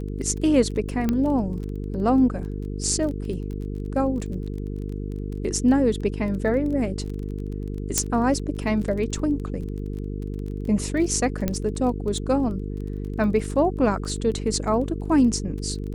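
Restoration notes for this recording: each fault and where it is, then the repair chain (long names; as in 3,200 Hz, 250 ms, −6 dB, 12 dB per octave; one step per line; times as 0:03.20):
mains buzz 50 Hz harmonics 9 −30 dBFS
surface crackle 23 per second −32 dBFS
0:01.09: click −11 dBFS
0:07.98: click −3 dBFS
0:11.48: click −10 dBFS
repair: click removal
hum removal 50 Hz, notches 9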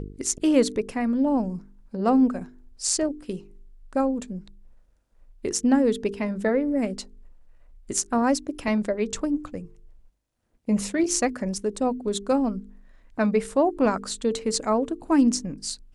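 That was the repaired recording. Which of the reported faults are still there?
none of them is left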